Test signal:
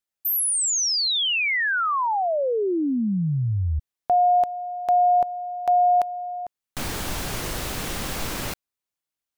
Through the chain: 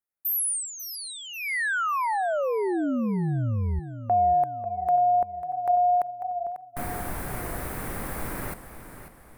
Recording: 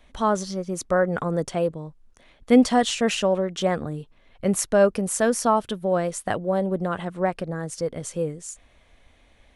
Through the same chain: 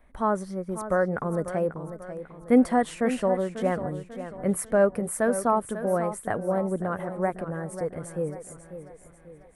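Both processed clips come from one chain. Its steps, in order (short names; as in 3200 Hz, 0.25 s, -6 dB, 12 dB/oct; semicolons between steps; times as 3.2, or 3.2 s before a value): band shelf 4400 Hz -14.5 dB; warbling echo 0.543 s, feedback 44%, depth 65 cents, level -11.5 dB; gain -3 dB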